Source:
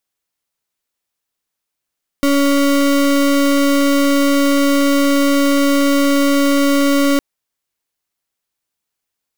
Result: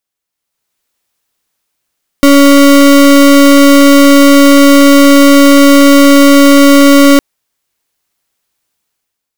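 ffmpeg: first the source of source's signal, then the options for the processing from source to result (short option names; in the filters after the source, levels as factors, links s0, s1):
-f lavfi -i "aevalsrc='0.224*(2*lt(mod(281*t,1),0.33)-1)':d=4.96:s=44100"
-af "dynaudnorm=f=130:g=9:m=3.76"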